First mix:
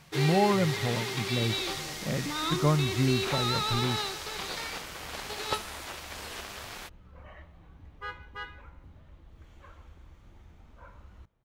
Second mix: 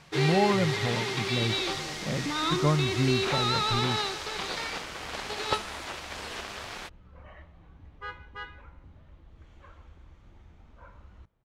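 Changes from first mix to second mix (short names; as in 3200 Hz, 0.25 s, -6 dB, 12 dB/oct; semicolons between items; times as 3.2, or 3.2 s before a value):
first sound +3.5 dB; master: add air absorption 50 m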